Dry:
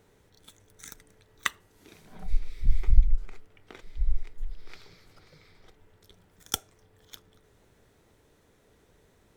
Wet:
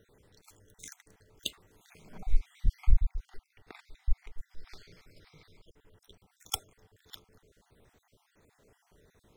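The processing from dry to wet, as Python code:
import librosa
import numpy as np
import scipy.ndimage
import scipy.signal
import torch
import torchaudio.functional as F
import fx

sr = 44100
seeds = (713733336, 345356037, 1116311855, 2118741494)

y = fx.spec_dropout(x, sr, seeds[0], share_pct=45)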